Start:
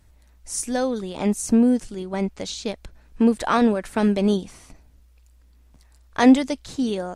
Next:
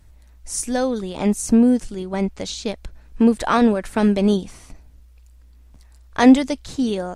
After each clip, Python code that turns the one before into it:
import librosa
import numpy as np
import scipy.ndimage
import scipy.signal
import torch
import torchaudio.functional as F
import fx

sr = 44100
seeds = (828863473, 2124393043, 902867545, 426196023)

y = fx.low_shelf(x, sr, hz=82.0, db=6.0)
y = y * 10.0 ** (2.0 / 20.0)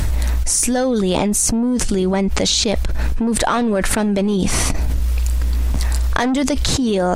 y = 10.0 ** (-12.5 / 20.0) * np.tanh(x / 10.0 ** (-12.5 / 20.0))
y = fx.env_flatten(y, sr, amount_pct=100)
y = y * 10.0 ** (-3.0 / 20.0)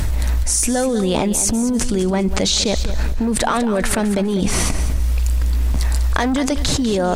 y = fx.echo_feedback(x, sr, ms=198, feedback_pct=28, wet_db=-12)
y = fx.quant_float(y, sr, bits=6)
y = y * 10.0 ** (-1.0 / 20.0)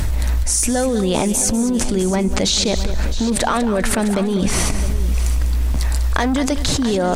y = x + 10.0 ** (-13.5 / 20.0) * np.pad(x, (int(661 * sr / 1000.0), 0))[:len(x)]